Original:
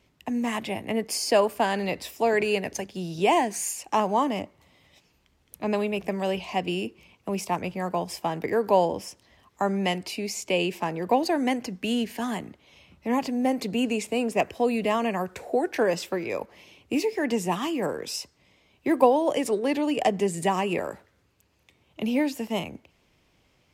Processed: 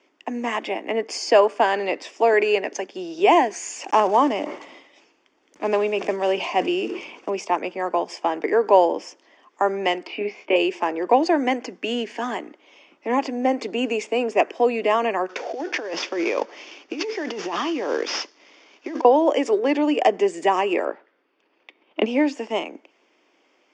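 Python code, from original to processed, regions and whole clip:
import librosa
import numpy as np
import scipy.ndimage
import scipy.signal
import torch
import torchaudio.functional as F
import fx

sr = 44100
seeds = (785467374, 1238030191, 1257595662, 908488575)

y = fx.chain(x, sr, fx.block_float(bits=5),
    fx.low_shelf(hz=120.0, db=9.0),
    fx.sustainer(db_per_s=55.0), at=(3.63, 7.32))
y = fx.chain(y, sr, fx.lowpass(hz=3000.0, slope=24),
    fx.doubler(ms=24.0, db=-4.0), at=(10.07, 10.56))
y = fx.chain(y, sr, fx.cvsd(bps=32000),
    fx.high_shelf(hz=4700.0, db=8.0),
    fx.over_compress(threshold_db=-31.0, ratio=-1.0), at=(15.29, 19.05))
y = fx.chain(y, sr, fx.lowpass(hz=4300.0, slope=24),
    fx.transient(attack_db=10, sustain_db=-3), at=(20.85, 22.06))
y = scipy.signal.sosfilt(scipy.signal.ellip(3, 1.0, 40, [300.0, 6700.0], 'bandpass', fs=sr, output='sos'), y)
y = fx.high_shelf(y, sr, hz=4700.0, db=-8.5)
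y = fx.notch(y, sr, hz=4000.0, q=6.5)
y = F.gain(torch.from_numpy(y), 6.5).numpy()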